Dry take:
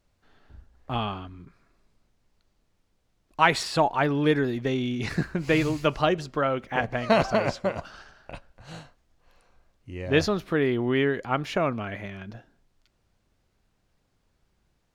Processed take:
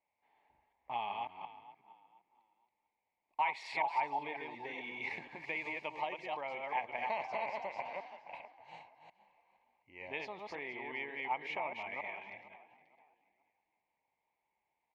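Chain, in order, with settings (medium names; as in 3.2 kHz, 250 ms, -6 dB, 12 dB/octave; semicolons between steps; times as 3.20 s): chunks repeated in reverse 182 ms, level -4 dB; frequency-shifting echo 471 ms, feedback 30%, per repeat +39 Hz, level -17.5 dB; compression 5:1, threshold -25 dBFS, peak gain reduction 11 dB; two resonant band-passes 1.4 kHz, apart 1.3 oct; tape noise reduction on one side only decoder only; trim +2 dB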